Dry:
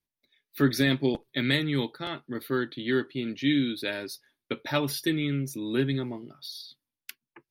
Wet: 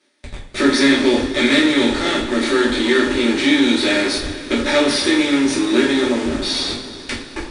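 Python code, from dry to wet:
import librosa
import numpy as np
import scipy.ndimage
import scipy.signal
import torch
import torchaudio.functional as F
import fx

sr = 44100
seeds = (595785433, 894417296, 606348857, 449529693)

p1 = fx.bin_compress(x, sr, power=0.6)
p2 = scipy.signal.sosfilt(scipy.signal.butter(4, 230.0, 'highpass', fs=sr, output='sos'), p1)
p3 = fx.leveller(p2, sr, passes=1)
p4 = fx.schmitt(p3, sr, flips_db=-37.5)
p5 = p3 + (p4 * 10.0 ** (-4.5 / 20.0))
p6 = fx.brickwall_lowpass(p5, sr, high_hz=10000.0)
p7 = fx.rev_double_slope(p6, sr, seeds[0], early_s=0.38, late_s=4.2, knee_db=-19, drr_db=-5.5)
y = p7 * 10.0 ** (-3.0 / 20.0)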